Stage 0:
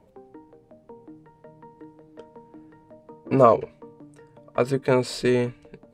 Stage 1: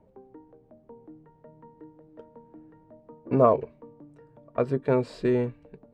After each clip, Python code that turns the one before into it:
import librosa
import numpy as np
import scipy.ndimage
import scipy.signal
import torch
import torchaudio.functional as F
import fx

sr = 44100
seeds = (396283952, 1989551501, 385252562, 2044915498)

y = fx.lowpass(x, sr, hz=1000.0, slope=6)
y = y * librosa.db_to_amplitude(-2.0)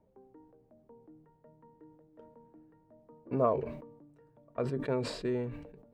y = fx.sustainer(x, sr, db_per_s=66.0)
y = y * librosa.db_to_amplitude(-9.0)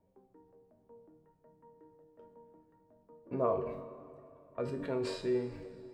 y = fx.comb_fb(x, sr, f0_hz=94.0, decay_s=0.39, harmonics='all', damping=0.0, mix_pct=80)
y = fx.rev_plate(y, sr, seeds[0], rt60_s=2.9, hf_ratio=0.8, predelay_ms=0, drr_db=10.5)
y = y * librosa.db_to_amplitude(5.0)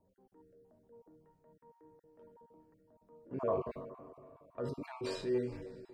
y = fx.spec_dropout(x, sr, seeds[1], share_pct=23)
y = fx.transient(y, sr, attack_db=-5, sustain_db=1)